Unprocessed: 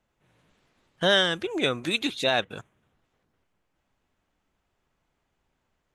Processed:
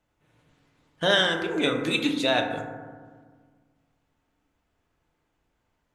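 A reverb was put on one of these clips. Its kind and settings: FDN reverb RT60 1.6 s, low-frequency decay 1.4×, high-frequency decay 0.3×, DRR 2.5 dB; gain -1 dB

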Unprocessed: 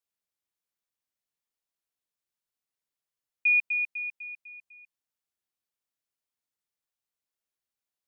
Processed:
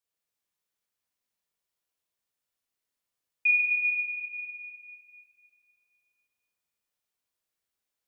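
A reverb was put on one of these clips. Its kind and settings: plate-style reverb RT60 2.5 s, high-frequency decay 0.9×, DRR -3.5 dB; gain -1 dB

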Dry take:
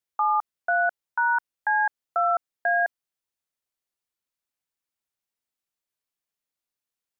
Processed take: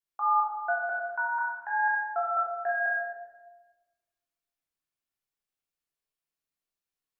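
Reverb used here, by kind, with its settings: shoebox room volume 780 m³, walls mixed, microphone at 3.3 m; gain -9.5 dB

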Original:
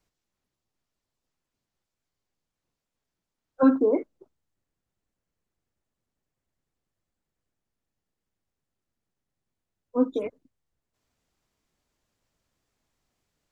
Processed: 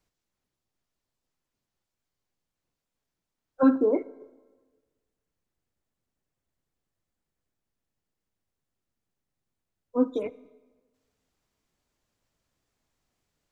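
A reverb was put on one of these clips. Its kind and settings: plate-style reverb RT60 1.4 s, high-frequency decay 0.8×, DRR 18.5 dB; gain -1 dB

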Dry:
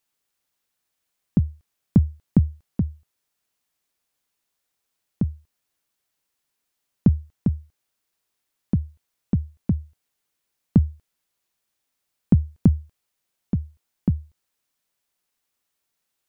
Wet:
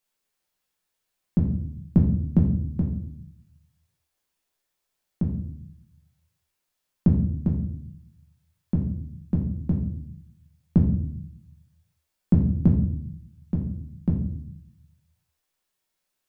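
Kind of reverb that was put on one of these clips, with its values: shoebox room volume 110 m³, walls mixed, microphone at 0.99 m; gain -4.5 dB

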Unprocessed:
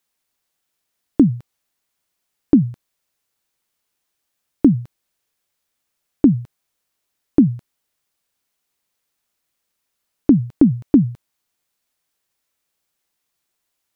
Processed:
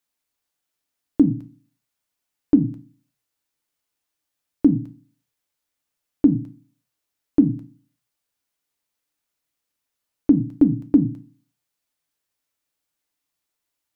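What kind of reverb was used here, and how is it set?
FDN reverb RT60 0.33 s, low-frequency decay 1.5×, high-frequency decay 0.95×, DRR 8 dB; gain -6 dB

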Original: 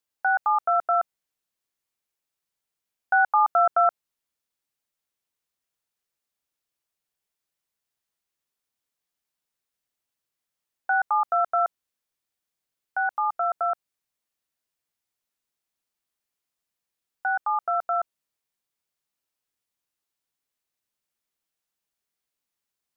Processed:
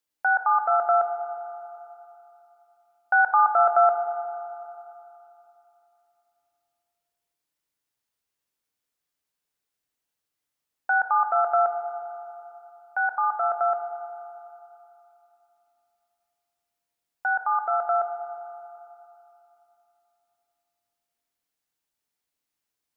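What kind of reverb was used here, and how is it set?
FDN reverb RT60 3 s, high-frequency decay 0.5×, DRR 5 dB

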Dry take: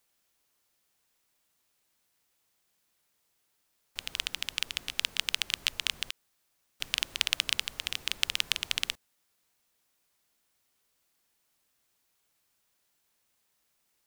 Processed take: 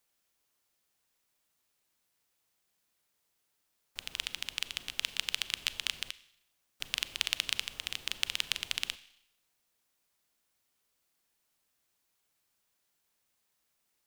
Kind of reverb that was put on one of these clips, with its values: Schroeder reverb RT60 0.77 s, combs from 30 ms, DRR 15.5 dB; gain -3.5 dB

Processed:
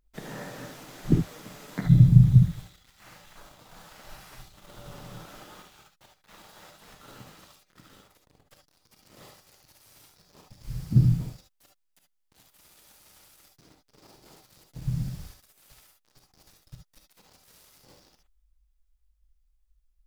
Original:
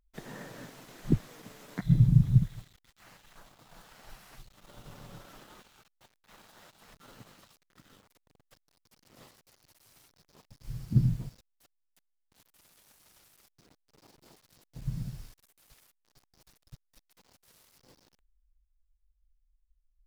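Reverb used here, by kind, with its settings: non-linear reverb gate 90 ms rising, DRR 2.5 dB; gain +3.5 dB

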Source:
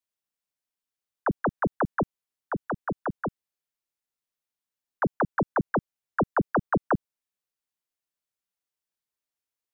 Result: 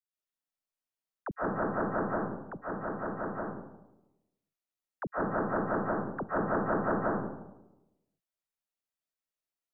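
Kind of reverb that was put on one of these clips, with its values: digital reverb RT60 0.99 s, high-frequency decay 0.35×, pre-delay 0.1 s, DRR -8 dB; gain -12.5 dB

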